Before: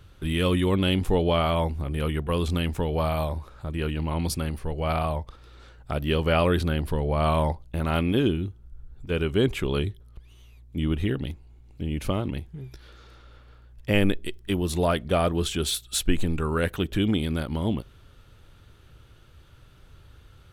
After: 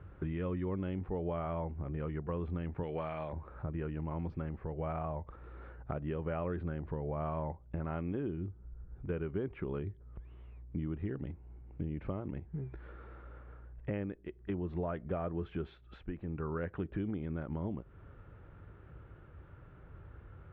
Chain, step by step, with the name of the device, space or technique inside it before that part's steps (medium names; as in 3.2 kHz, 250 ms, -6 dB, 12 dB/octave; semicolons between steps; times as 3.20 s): 2.83–3.33 s: frequency weighting D; bass amplifier (compression 5:1, threshold -36 dBFS, peak gain reduction 18 dB; cabinet simulation 65–2000 Hz, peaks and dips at 73 Hz -7 dB, 120 Hz -6 dB, 240 Hz -4 dB); tilt EQ -1.5 dB/octave